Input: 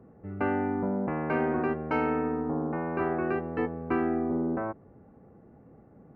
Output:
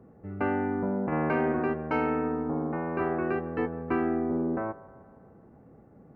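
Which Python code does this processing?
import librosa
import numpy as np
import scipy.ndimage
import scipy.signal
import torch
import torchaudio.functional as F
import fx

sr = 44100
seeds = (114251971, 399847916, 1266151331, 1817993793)

p1 = x + fx.echo_wet_bandpass(x, sr, ms=156, feedback_pct=60, hz=890.0, wet_db=-17, dry=0)
y = fx.env_flatten(p1, sr, amount_pct=70, at=(1.12, 1.52))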